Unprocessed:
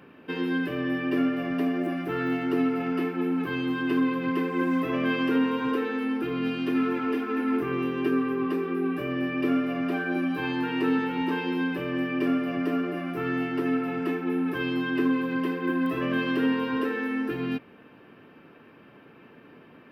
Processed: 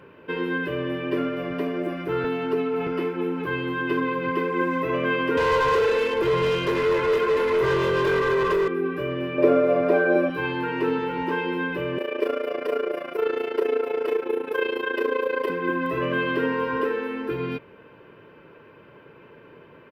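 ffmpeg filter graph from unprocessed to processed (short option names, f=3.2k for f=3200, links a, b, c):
-filter_complex "[0:a]asettb=1/sr,asplit=3[a][b][c];[a]atrim=end=2.244[d];[b]atrim=start=2.24:end=2.87,asetpts=PTS-STARTPTS,afade=t=in:d=0.004:c=qsin,afade=t=out:st=0.626:d=0.004:c=qsin,aecho=1:1:4.6:0.98,atrim=end_sample=27783,acrossover=split=120|260[e][f][g];[e]acompressor=threshold=-51dB:ratio=4[h];[f]acompressor=threshold=-31dB:ratio=4[i];[g]acompressor=threshold=-27dB:ratio=4[j];[h][i][j]amix=inputs=3:normalize=0[k];[c]atrim=start=2.866[l];[d][k]acrossfade=d=0.004:c1=hsin:c2=qsin[m];[m][l]acrossfade=d=0.004:c1=qsin:c2=hsin,asettb=1/sr,asplit=3[n][o][p];[n]atrim=end=5.374[q];[o]atrim=start=5.37:end=8.68,asetpts=PTS-STARTPTS,afade=t=in:d=0.004:c=qsin,afade=t=out:st=3.306:d=0.004:c=qsin,aecho=1:1:1.9:0.8,atrim=end_sample=145971,acontrast=77,asoftclip=type=hard:threshold=-24dB[r];[p]atrim=start=8.676[s];[q][r]acrossfade=d=0.004:c1=hsin:c2=qsin[t];[t][s]acrossfade=d=0.004:c1=qsin:c2=hsin,asettb=1/sr,asplit=3[u][v][w];[u]atrim=end=9.384[x];[v]atrim=start=9.38:end=10.3,asetpts=PTS-STARTPTS,afade=t=in:d=0.004:c=qsin,afade=t=out:st=0.916:d=0.004:c=qsin,equalizer=f=580:t=o:w=1.1:g=14,bandreject=f=3k:w=9.8[y];[w]atrim=start=10.296[z];[x][y]acrossfade=d=0.004:c1=hsin:c2=qsin[aa];[aa][z]acrossfade=d=0.004:c1=qsin:c2=hsin,asettb=1/sr,asplit=3[ab][ac][ad];[ab]atrim=end=11.984[ae];[ac]atrim=start=11.98:end=15.5,asetpts=PTS-STARTPTS,afade=t=in:d=0.004:c=qsin,afade=t=out:st=3.516:d=0.004:c=qsin,highpass=f=480:t=q:w=3,highshelf=f=3.1k:g=8.5,tremolo=f=28:d=0.788[af];[ad]atrim=start=15.496[ag];[ae][af]acrossfade=d=0.004:c1=hsin:c2=qsin[ah];[ah][ag]acrossfade=d=0.004:c1=qsin:c2=hsin,highshelf=f=4k:g=-7.5,aecho=1:1:2:0.59,volume=3dB"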